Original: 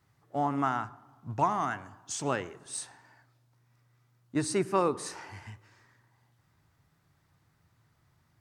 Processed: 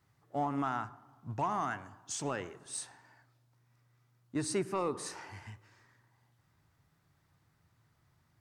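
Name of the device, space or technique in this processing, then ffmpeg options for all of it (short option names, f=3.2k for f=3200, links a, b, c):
soft clipper into limiter: -af "asoftclip=type=tanh:threshold=-15.5dB,alimiter=limit=-21.5dB:level=0:latency=1:release=112,volume=-2.5dB"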